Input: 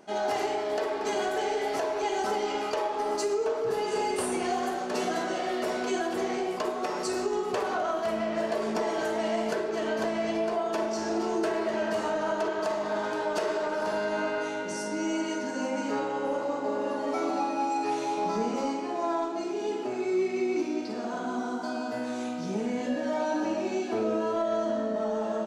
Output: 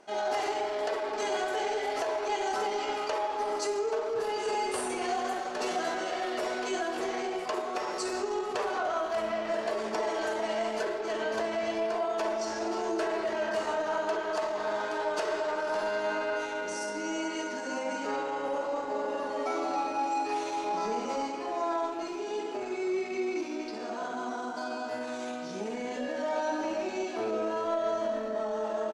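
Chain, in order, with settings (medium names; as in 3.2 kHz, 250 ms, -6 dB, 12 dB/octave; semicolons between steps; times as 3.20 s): Bessel low-pass 10 kHz, order 6; peaking EQ 160 Hz -11 dB 1.9 oct; tempo 0.88×; speakerphone echo 310 ms, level -11 dB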